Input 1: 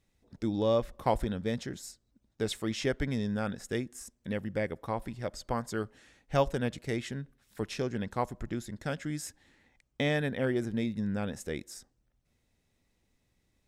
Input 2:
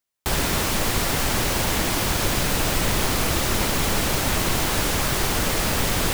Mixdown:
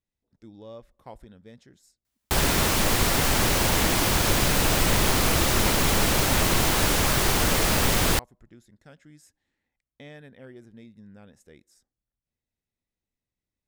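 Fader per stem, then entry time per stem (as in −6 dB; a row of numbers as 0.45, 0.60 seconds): −16.0, +0.5 decibels; 0.00, 2.05 seconds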